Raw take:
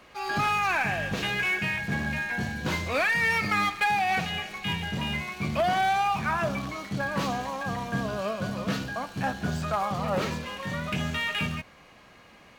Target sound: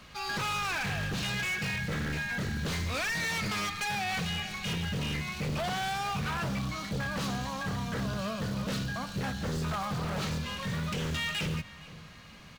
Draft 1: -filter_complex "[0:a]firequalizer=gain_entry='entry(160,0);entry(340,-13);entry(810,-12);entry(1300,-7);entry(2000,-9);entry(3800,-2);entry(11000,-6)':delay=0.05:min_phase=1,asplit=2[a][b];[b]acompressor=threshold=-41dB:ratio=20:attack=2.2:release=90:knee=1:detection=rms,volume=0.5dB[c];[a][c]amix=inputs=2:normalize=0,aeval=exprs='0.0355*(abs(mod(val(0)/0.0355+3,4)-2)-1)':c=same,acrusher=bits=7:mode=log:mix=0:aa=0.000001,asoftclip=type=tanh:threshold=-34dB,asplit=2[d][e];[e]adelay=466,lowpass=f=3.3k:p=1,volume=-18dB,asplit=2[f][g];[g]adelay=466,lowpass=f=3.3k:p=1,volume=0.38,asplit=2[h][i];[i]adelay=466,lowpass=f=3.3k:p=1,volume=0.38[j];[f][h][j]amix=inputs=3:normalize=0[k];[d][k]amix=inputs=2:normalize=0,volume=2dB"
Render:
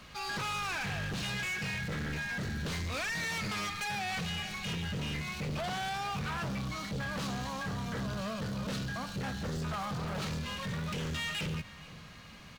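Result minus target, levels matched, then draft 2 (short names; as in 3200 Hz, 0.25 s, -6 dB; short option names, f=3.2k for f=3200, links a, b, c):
soft clip: distortion +19 dB
-filter_complex "[0:a]firequalizer=gain_entry='entry(160,0);entry(340,-13);entry(810,-12);entry(1300,-7);entry(2000,-9);entry(3800,-2);entry(11000,-6)':delay=0.05:min_phase=1,asplit=2[a][b];[b]acompressor=threshold=-41dB:ratio=20:attack=2.2:release=90:knee=1:detection=rms,volume=0.5dB[c];[a][c]amix=inputs=2:normalize=0,aeval=exprs='0.0355*(abs(mod(val(0)/0.0355+3,4)-2)-1)':c=same,acrusher=bits=7:mode=log:mix=0:aa=0.000001,asoftclip=type=tanh:threshold=-22.5dB,asplit=2[d][e];[e]adelay=466,lowpass=f=3.3k:p=1,volume=-18dB,asplit=2[f][g];[g]adelay=466,lowpass=f=3.3k:p=1,volume=0.38,asplit=2[h][i];[i]adelay=466,lowpass=f=3.3k:p=1,volume=0.38[j];[f][h][j]amix=inputs=3:normalize=0[k];[d][k]amix=inputs=2:normalize=0,volume=2dB"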